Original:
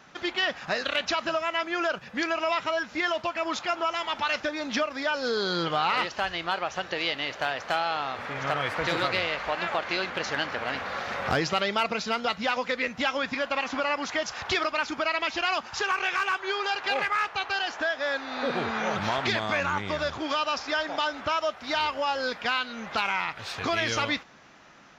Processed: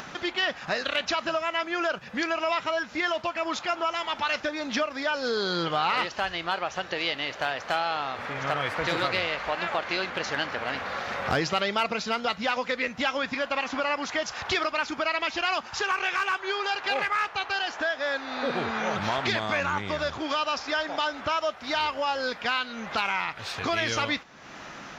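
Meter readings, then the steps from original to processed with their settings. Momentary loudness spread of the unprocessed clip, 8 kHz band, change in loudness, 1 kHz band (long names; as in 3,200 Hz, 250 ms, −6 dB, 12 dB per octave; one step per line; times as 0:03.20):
4 LU, 0.0 dB, 0.0 dB, 0.0 dB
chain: upward compression, threshold −30 dBFS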